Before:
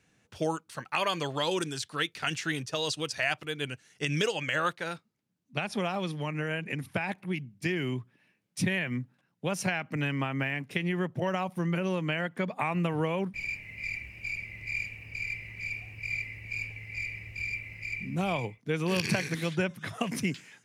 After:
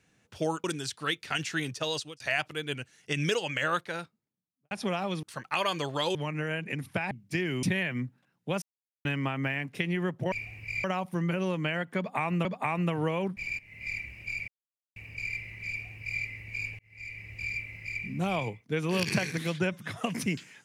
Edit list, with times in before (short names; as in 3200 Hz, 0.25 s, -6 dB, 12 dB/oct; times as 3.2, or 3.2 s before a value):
0.64–1.56 move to 6.15
2.82–3.12 fade out linear
4.78–5.63 studio fade out
7.11–7.42 cut
7.94–8.59 cut
9.58–10.01 mute
12.42–12.89 loop, 2 plays
13.56–13.84 fade in, from -14 dB
14.45–14.93 mute
15.67–16.19 copy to 11.28
16.76–17.33 fade in